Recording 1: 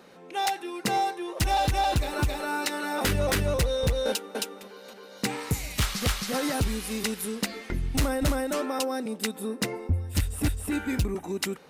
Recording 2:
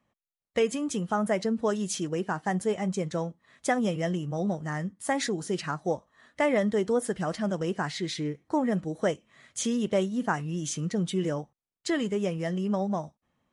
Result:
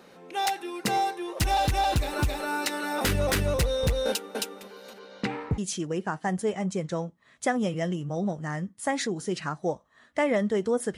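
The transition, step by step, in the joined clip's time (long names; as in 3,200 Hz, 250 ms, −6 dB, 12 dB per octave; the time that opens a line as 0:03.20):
recording 1
0:04.98–0:05.58: low-pass filter 7,300 Hz → 1,000 Hz
0:05.58: continue with recording 2 from 0:01.80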